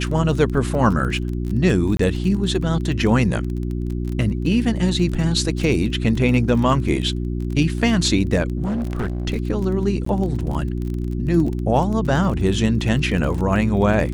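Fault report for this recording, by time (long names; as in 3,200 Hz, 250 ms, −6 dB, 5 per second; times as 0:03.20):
surface crackle 25 per second −26 dBFS
mains hum 60 Hz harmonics 6 −24 dBFS
0:01.97–0:01.99: drop-out 23 ms
0:08.65–0:09.27: clipping −19.5 dBFS
0:10.05–0:10.06: drop-out 14 ms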